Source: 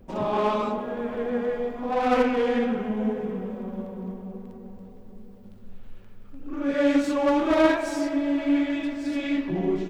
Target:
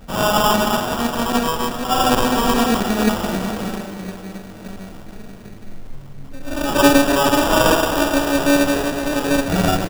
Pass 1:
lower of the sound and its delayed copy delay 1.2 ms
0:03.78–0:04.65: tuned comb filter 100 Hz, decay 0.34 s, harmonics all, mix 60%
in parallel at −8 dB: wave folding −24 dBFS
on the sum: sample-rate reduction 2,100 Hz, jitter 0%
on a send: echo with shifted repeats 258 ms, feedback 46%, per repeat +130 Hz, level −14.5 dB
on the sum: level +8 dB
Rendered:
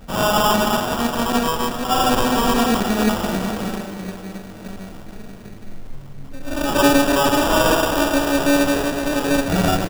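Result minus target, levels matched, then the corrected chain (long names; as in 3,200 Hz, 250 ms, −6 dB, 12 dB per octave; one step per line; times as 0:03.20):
wave folding: distortion +27 dB
lower of the sound and its delayed copy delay 1.2 ms
0:03.78–0:04.65: tuned comb filter 100 Hz, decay 0.34 s, harmonics all, mix 60%
in parallel at −8 dB: wave folding −15 dBFS
on the sum: sample-rate reduction 2,100 Hz, jitter 0%
on a send: echo with shifted repeats 258 ms, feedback 46%, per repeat +130 Hz, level −14.5 dB
on the sum: level +8 dB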